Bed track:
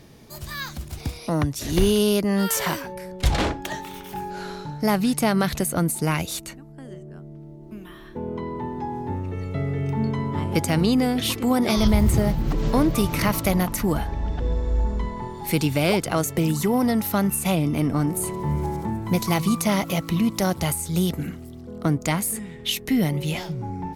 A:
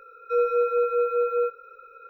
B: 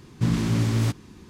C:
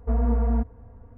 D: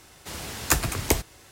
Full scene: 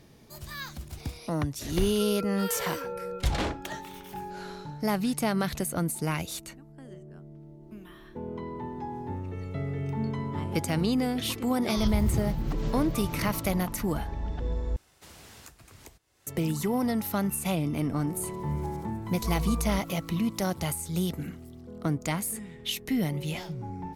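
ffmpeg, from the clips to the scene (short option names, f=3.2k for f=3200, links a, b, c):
-filter_complex "[0:a]volume=-6.5dB[a];[1:a]acompressor=threshold=-27dB:ratio=6:attack=3.2:release=140:knee=1:detection=peak[b];[4:a]acompressor=threshold=-32dB:ratio=8:attack=3.4:release=311:knee=1:detection=rms[c];[3:a]aecho=1:1:1.9:0.68[d];[a]asplit=2[e][f];[e]atrim=end=14.764[g];[c]atrim=end=1.51,asetpts=PTS-STARTPTS,volume=-11.5dB[h];[f]atrim=start=16.266[i];[b]atrim=end=2.09,asetpts=PTS-STARTPTS,volume=-7dB,afade=t=in:d=0.004:c=hsin,afade=t=out:st=2.086:d=0.004:c=hsin,adelay=1700[j];[d]atrim=end=1.17,asetpts=PTS-STARTPTS,volume=-12.5dB,afade=t=in:d=0.004:c=hsin,afade=t=out:st=1.166:d=0.004:c=hsin,adelay=19160[k];[g][h]acrossfade=d=0.004:c1=hsin:c2=hsin[l];[l][i]acrossfade=d=0.004:c1=hsin:c2=hsin[m];[m][j][k]amix=inputs=3:normalize=0"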